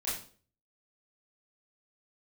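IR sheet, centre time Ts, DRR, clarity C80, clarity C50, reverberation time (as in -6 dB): 44 ms, -10.0 dB, 9.0 dB, 4.0 dB, 0.45 s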